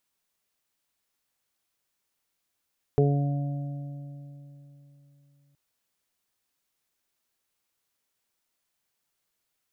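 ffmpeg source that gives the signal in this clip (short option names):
-f lavfi -i "aevalsrc='0.106*pow(10,-3*t/3.53)*sin(2*PI*142*t)+0.0398*pow(10,-3*t/3.11)*sin(2*PI*284*t)+0.133*pow(10,-3*t/0.52)*sin(2*PI*426*t)+0.0168*pow(10,-3*t/3.27)*sin(2*PI*568*t)+0.0237*pow(10,-3*t/2.26)*sin(2*PI*710*t)':d=2.57:s=44100"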